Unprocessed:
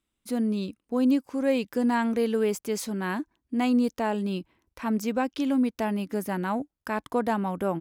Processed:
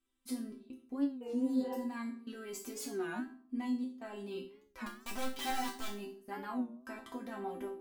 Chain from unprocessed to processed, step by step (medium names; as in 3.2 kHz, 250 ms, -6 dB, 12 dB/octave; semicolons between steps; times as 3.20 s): 1.12–1.77 s: spectral replace 490–3400 Hz both; in parallel at -1 dB: compressor with a negative ratio -28 dBFS; on the sum: peak limiter -22 dBFS, peak gain reduction 10 dB; trance gate "xxx.xx.xxxxx.xxx" 86 bpm -24 dB; 4.87–5.88 s: integer overflow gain 24.5 dB; chord resonator C4 major, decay 0.38 s; on a send at -8 dB: reverberation RT60 0.55 s, pre-delay 4 ms; on the sum: warped record 33 1/3 rpm, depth 160 cents; trim +9 dB